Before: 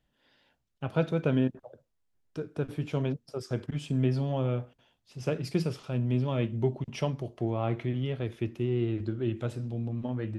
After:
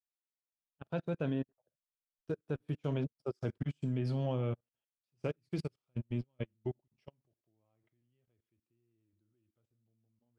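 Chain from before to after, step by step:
source passing by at 0:02.89, 15 m/s, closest 19 metres
output level in coarse steps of 18 dB
expander for the loud parts 2.5 to 1, over −54 dBFS
level +4.5 dB

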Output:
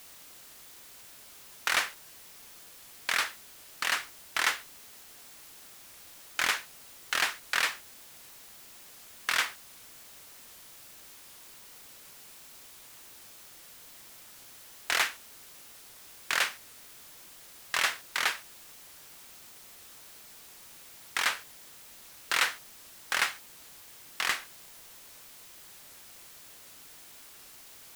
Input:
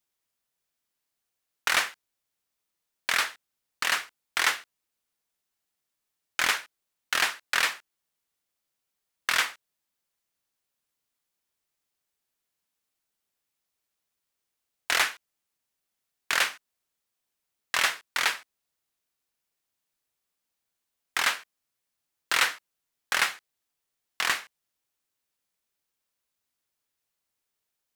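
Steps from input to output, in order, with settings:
background noise white −48 dBFS
wow of a warped record 78 rpm, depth 100 cents
level −3 dB

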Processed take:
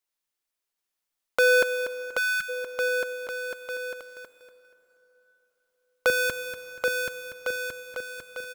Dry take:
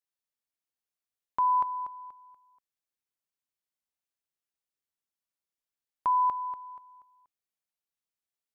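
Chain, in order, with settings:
sub-harmonics by changed cycles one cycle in 2, inverted
parametric band 95 Hz −12 dB 2.8 octaves, from 0:06.10 500 Hz
bouncing-ball delay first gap 780 ms, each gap 0.8×, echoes 5
convolution reverb RT60 4.2 s, pre-delay 48 ms, DRR 16 dB
0:02.18–0:02.49: time-frequency box erased 210–1,200 Hz
low-shelf EQ 180 Hz +5.5 dB
level +6.5 dB

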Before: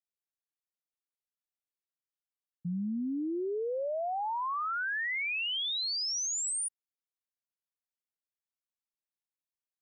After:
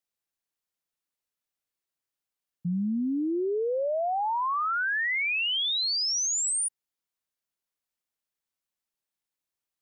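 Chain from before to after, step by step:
0:02.72–0:03.31: high shelf with overshoot 2,300 Hz +6.5 dB, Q 3
level +5.5 dB

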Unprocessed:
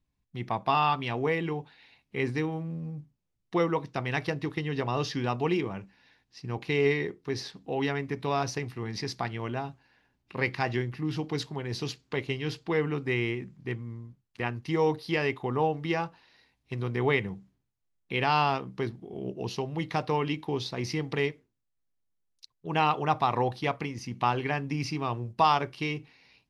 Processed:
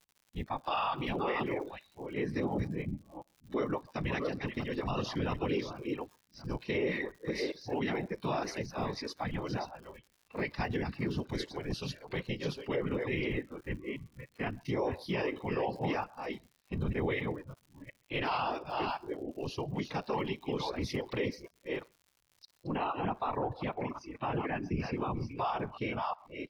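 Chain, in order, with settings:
delay that plays each chunk backwards 358 ms, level −7 dB
reverb reduction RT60 0.57 s
harmonic and percussive parts rebalanced percussive −6 dB
random phases in short frames
single-tap delay 132 ms −23.5 dB
surface crackle 140 per second −41 dBFS
brickwall limiter −23.5 dBFS, peak gain reduction 10.5 dB
high-shelf EQ 3,500 Hz +2.5 dB, from 0:22.67 −9 dB
noise reduction from a noise print of the clip's start 11 dB
dynamic equaliser 7,000 Hz, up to −5 dB, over −57 dBFS, Q 1.9

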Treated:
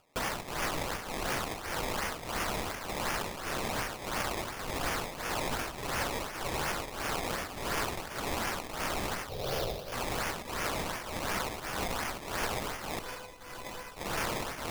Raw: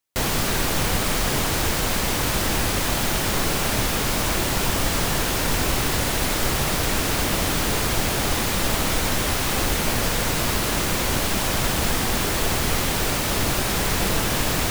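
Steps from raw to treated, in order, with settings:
0:07.54–0:08.18: elliptic band-stop filter 1,800–4,300 Hz
sample-and-hold swept by an LFO 21×, swing 100% 2.8 Hz
low-shelf EQ 490 Hz −10.5 dB
shaped tremolo triangle 1.7 Hz, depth 80%
0:09.29–0:09.93: octave-band graphic EQ 125/250/500/1,000/2,000/4,000/8,000 Hz +7/−10/+9/−8/−9/+5/−9 dB
upward compression, threshold −49 dBFS
0:12.99–0:13.97: tuned comb filter 500 Hz, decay 0.16 s, harmonics all, mix 80%
brickwall limiter −18.5 dBFS, peak gain reduction 6 dB
level −2.5 dB

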